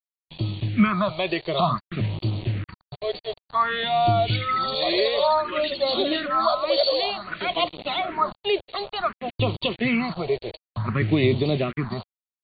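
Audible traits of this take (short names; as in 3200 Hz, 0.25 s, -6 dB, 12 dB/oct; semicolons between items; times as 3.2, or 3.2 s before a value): a quantiser's noise floor 6-bit, dither none; phasing stages 4, 0.55 Hz, lowest notch 210–1600 Hz; AC-3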